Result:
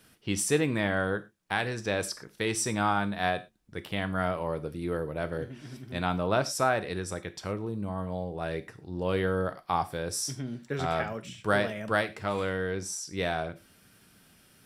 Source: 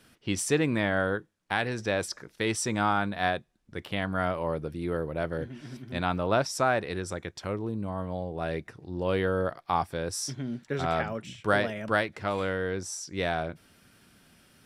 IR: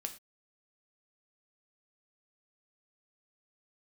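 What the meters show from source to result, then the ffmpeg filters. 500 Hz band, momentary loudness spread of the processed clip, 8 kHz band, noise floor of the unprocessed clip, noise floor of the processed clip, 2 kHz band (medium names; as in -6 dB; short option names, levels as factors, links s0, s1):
-1.0 dB, 9 LU, +1.5 dB, -65 dBFS, -60 dBFS, -1.0 dB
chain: -filter_complex "[0:a]asplit=2[s0][s1];[1:a]atrim=start_sample=2205,highshelf=f=7900:g=11[s2];[s1][s2]afir=irnorm=-1:irlink=0,volume=1.33[s3];[s0][s3]amix=inputs=2:normalize=0,volume=0.422"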